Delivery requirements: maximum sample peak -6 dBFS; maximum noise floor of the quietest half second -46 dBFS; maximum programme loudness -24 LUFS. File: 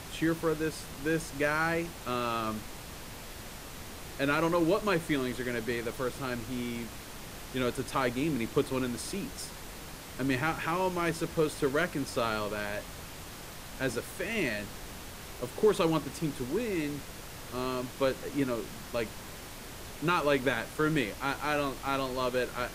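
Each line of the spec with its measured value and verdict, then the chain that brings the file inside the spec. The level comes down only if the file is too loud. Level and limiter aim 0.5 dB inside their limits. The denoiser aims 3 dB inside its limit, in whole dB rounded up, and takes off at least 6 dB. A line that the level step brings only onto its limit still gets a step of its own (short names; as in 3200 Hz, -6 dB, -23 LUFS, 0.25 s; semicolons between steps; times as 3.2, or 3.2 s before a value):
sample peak -14.5 dBFS: OK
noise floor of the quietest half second -44 dBFS: fail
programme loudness -31.5 LUFS: OK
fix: denoiser 6 dB, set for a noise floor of -44 dBFS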